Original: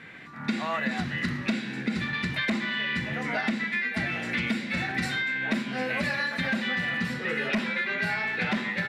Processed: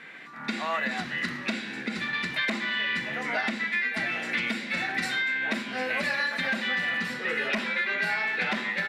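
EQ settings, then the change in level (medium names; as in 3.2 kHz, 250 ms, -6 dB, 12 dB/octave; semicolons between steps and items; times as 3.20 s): peaking EQ 100 Hz -11 dB 1 oct; bass shelf 230 Hz -10 dB; +1.5 dB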